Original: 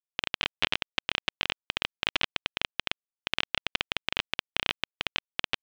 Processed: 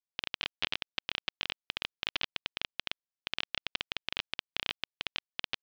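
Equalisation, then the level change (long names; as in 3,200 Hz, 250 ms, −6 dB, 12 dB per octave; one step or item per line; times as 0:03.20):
low-pass with resonance 5,000 Hz, resonance Q 1.9
−8.5 dB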